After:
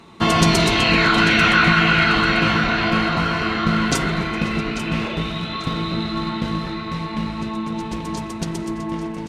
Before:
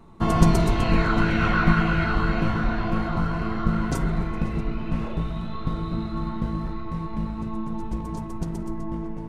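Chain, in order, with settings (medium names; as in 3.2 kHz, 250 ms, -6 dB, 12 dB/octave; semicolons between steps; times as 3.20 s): frequency weighting D; in parallel at +1.5 dB: peak limiter -14.5 dBFS, peak gain reduction 8.5 dB; on the sum: feedback delay 842 ms, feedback 31%, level -12.5 dB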